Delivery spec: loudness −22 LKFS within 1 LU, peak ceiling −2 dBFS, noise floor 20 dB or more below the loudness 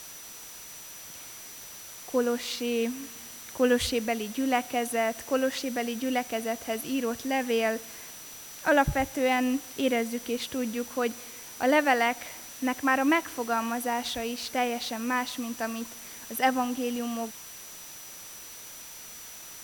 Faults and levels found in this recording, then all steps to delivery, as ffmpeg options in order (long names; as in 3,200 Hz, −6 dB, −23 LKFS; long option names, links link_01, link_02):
interfering tone 5,900 Hz; level of the tone −47 dBFS; background noise floor −44 dBFS; target noise floor −49 dBFS; integrated loudness −28.5 LKFS; sample peak −10.0 dBFS; target loudness −22.0 LKFS
→ -af "bandreject=frequency=5900:width=30"
-af "afftdn=noise_reduction=6:noise_floor=-44"
-af "volume=6.5dB"